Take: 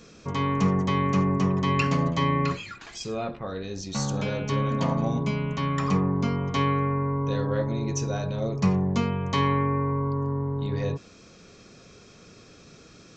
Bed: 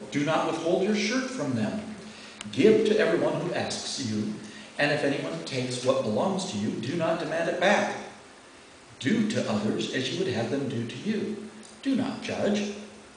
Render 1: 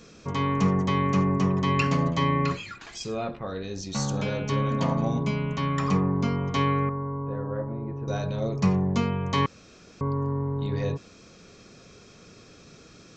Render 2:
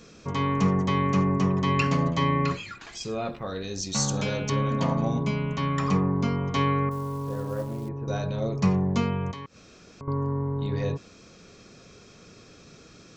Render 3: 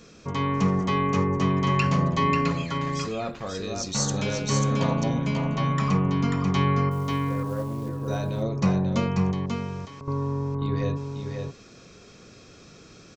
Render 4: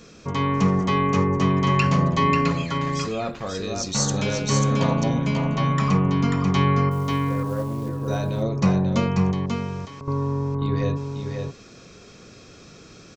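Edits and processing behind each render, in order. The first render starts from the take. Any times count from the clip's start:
6.89–8.08 s: four-pole ladder low-pass 1.7 kHz, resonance 20%; 9.46–10.01 s: room tone
3.25–4.50 s: treble shelf 4.7 kHz +11.5 dB; 6.91–7.89 s: companded quantiser 6-bit; 9.31–10.08 s: compression 3:1, threshold -41 dBFS
delay 539 ms -4.5 dB
trim +3 dB

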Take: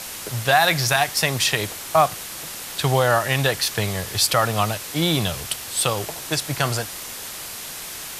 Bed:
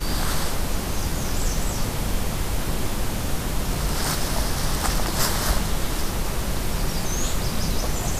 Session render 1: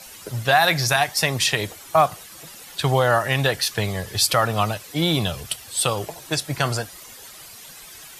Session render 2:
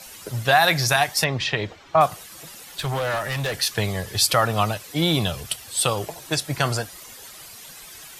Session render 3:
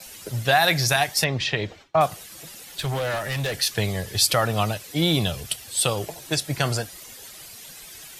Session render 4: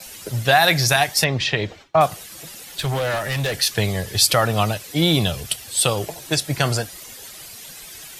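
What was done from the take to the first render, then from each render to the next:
noise reduction 12 dB, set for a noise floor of -34 dBFS
1.24–2.01 s: distance through air 190 m; 2.61–3.54 s: valve stage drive 21 dB, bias 0.25
gate with hold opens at -37 dBFS; peaking EQ 1.1 kHz -5 dB 1 oct
trim +3.5 dB

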